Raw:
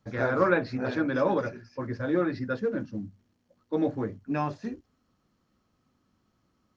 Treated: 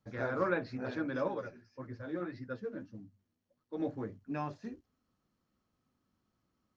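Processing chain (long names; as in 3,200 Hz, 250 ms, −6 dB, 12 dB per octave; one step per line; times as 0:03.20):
0:01.28–0:03.80: flanger 1.7 Hz, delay 6.3 ms, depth 6.7 ms, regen +37%
level −8.5 dB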